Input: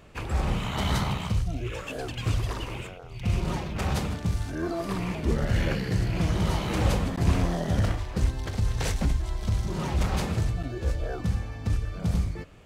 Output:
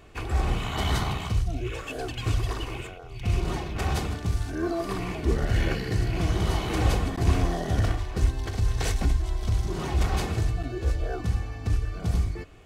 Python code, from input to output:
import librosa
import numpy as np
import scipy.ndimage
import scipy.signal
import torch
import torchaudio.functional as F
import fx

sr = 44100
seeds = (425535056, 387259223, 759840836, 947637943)

y = x + 0.42 * np.pad(x, (int(2.7 * sr / 1000.0), 0))[:len(x)]